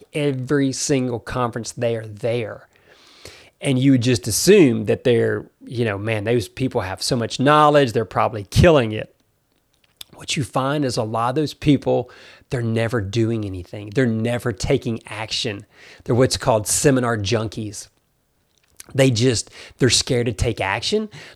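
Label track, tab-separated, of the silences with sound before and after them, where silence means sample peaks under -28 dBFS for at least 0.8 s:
9.030000	10.010000	silence
17.830000	18.800000	silence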